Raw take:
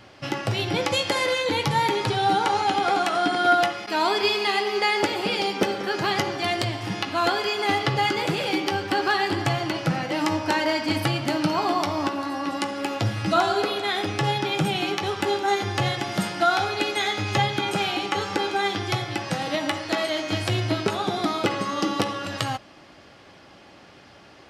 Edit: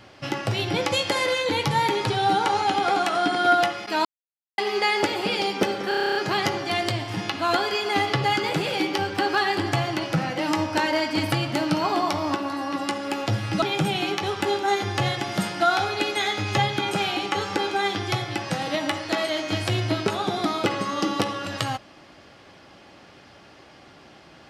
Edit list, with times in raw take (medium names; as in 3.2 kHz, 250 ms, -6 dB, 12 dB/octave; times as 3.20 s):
4.05–4.58 s: mute
5.88 s: stutter 0.03 s, 10 plays
13.35–14.42 s: delete